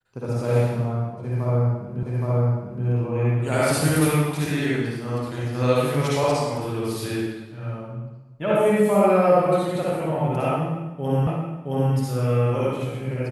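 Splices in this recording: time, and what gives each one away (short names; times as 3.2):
2.03 repeat of the last 0.82 s
11.27 repeat of the last 0.67 s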